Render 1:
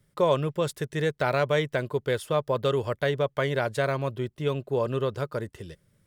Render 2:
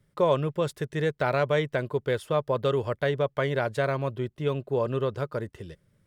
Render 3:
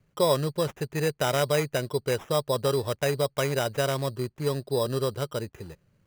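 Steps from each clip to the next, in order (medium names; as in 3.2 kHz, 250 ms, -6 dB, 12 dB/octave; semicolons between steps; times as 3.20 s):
treble shelf 4.2 kHz -7 dB
sample-and-hold 10×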